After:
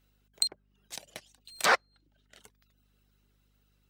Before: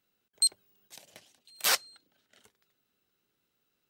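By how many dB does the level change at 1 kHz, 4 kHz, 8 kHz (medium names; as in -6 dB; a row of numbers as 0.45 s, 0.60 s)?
+8.5 dB, -2.5 dB, -5.5 dB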